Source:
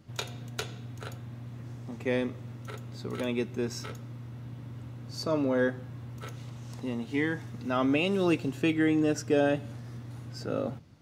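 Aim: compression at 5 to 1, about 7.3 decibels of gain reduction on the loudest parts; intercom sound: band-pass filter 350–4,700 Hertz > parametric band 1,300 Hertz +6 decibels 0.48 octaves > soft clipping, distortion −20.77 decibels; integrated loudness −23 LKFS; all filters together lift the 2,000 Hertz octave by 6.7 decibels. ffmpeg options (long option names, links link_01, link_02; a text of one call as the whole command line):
ffmpeg -i in.wav -af "equalizer=frequency=2000:width_type=o:gain=7,acompressor=threshold=-28dB:ratio=5,highpass=350,lowpass=4700,equalizer=frequency=1300:width_type=o:width=0.48:gain=6,asoftclip=threshold=-22dB,volume=14dB" out.wav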